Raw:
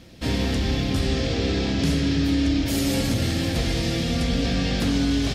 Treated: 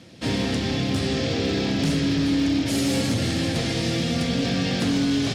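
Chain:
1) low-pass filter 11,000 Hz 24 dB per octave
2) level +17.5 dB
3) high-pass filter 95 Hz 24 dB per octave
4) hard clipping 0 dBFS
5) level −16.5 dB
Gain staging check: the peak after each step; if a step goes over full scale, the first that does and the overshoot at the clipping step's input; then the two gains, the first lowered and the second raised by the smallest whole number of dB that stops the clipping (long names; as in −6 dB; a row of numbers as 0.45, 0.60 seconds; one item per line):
−12.0, +5.5, +6.0, 0.0, −16.5 dBFS
step 2, 6.0 dB
step 2 +11.5 dB, step 5 −10.5 dB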